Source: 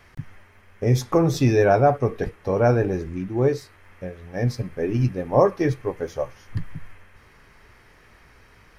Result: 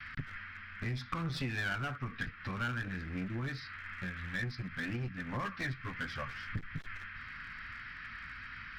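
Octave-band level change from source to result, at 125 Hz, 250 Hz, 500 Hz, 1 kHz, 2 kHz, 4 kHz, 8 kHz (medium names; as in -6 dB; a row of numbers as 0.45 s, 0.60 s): -15.0 dB, -16.0 dB, -28.5 dB, -15.5 dB, -1.5 dB, -4.0 dB, no reading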